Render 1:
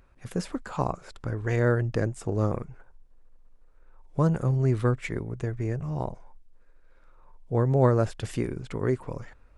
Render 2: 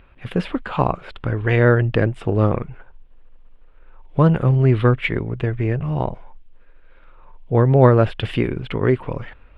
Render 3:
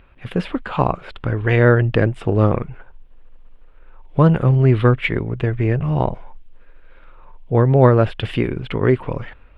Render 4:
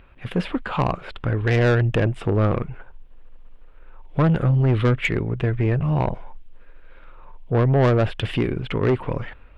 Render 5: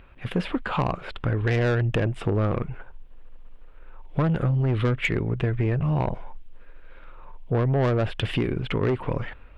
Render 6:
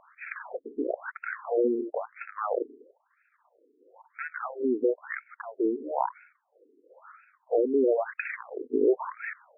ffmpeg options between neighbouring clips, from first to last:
ffmpeg -i in.wav -af "highshelf=frequency=4500:width_type=q:width=3:gain=-14,volume=8.5dB" out.wav
ffmpeg -i in.wav -af "dynaudnorm=framelen=250:gausssize=5:maxgain=4dB" out.wav
ffmpeg -i in.wav -af "asoftclip=type=tanh:threshold=-13dB" out.wav
ffmpeg -i in.wav -af "acompressor=threshold=-20dB:ratio=6" out.wav
ffmpeg -i in.wav -af "afftfilt=real='re*between(b*sr/1024,310*pow(1900/310,0.5+0.5*sin(2*PI*1*pts/sr))/1.41,310*pow(1900/310,0.5+0.5*sin(2*PI*1*pts/sr))*1.41)':imag='im*between(b*sr/1024,310*pow(1900/310,0.5+0.5*sin(2*PI*1*pts/sr))/1.41,310*pow(1900/310,0.5+0.5*sin(2*PI*1*pts/sr))*1.41)':win_size=1024:overlap=0.75,volume=4.5dB" out.wav

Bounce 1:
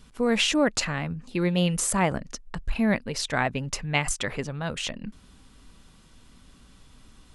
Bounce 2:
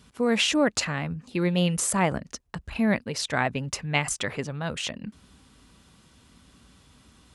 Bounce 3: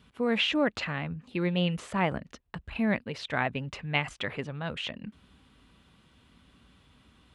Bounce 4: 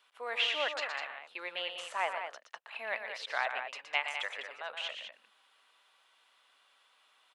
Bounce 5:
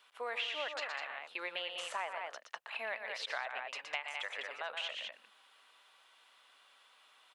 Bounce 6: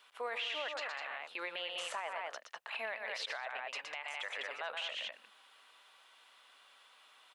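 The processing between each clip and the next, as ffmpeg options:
ffmpeg -i in.wav -af "highpass=frequency=54:width=0.5412,highpass=frequency=54:width=1.3066" out.wav
ffmpeg -i in.wav -filter_complex "[0:a]highshelf=frequency=4300:width_type=q:width=1.5:gain=-8,acrossover=split=5800[link_01][link_02];[link_02]acompressor=threshold=-54dB:ratio=4:attack=1:release=60[link_03];[link_01][link_03]amix=inputs=2:normalize=0,volume=-4dB" out.wav
ffmpeg -i in.wav -af "highpass=frequency=630:width=0.5412,highpass=frequency=630:width=1.3066,aecho=1:1:119.5|201.2:0.398|0.398,volume=-3dB" out.wav
ffmpeg -i in.wav -af "acompressor=threshold=-39dB:ratio=5,volume=3dB" out.wav
ffmpeg -i in.wav -af "alimiter=level_in=8dB:limit=-24dB:level=0:latency=1:release=16,volume=-8dB,volume=2dB" out.wav

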